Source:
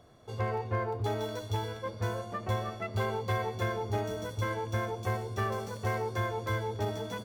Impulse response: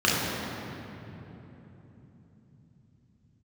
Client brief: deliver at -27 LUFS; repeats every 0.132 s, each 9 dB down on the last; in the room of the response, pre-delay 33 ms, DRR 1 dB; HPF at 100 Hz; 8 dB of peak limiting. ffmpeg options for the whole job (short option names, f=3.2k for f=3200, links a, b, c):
-filter_complex "[0:a]highpass=100,alimiter=level_in=3dB:limit=-24dB:level=0:latency=1,volume=-3dB,aecho=1:1:132|264|396|528:0.355|0.124|0.0435|0.0152,asplit=2[a][b];[1:a]atrim=start_sample=2205,adelay=33[c];[b][c]afir=irnorm=-1:irlink=0,volume=-19dB[d];[a][d]amix=inputs=2:normalize=0,volume=5dB"